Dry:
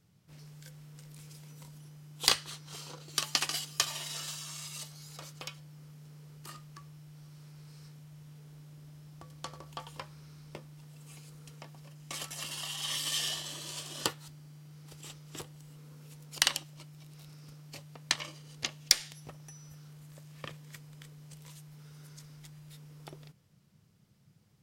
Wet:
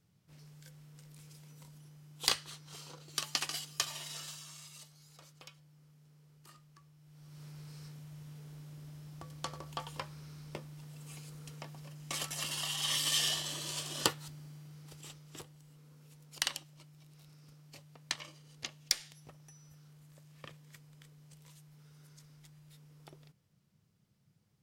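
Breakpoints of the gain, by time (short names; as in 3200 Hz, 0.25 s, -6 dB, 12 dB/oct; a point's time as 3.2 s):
4.15 s -4.5 dB
4.87 s -11 dB
6.97 s -11 dB
7.43 s +2 dB
14.44 s +2 dB
15.61 s -7 dB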